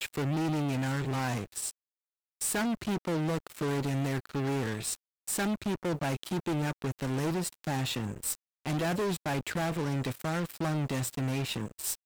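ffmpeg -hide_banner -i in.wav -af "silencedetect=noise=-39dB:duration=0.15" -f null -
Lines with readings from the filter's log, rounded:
silence_start: 1.71
silence_end: 2.41 | silence_duration: 0.70
silence_start: 4.95
silence_end: 5.27 | silence_duration: 0.32
silence_start: 8.35
silence_end: 8.66 | silence_duration: 0.31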